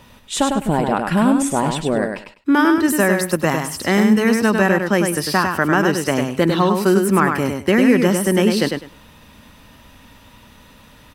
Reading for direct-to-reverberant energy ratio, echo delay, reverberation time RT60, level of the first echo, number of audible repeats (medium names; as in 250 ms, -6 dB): no reverb, 101 ms, no reverb, -5.0 dB, 3